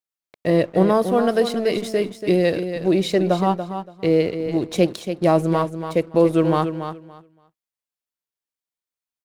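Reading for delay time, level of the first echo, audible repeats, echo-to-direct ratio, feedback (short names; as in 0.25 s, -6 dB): 0.285 s, -9.0 dB, 2, -9.0 dB, 19%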